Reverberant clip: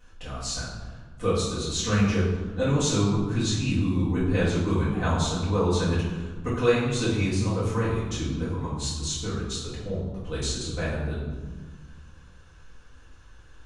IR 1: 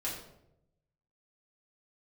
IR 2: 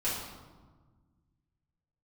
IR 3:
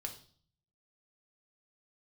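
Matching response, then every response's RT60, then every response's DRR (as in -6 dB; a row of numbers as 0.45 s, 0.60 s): 2; 0.80 s, 1.4 s, 0.45 s; -7.0 dB, -10.5 dB, 3.0 dB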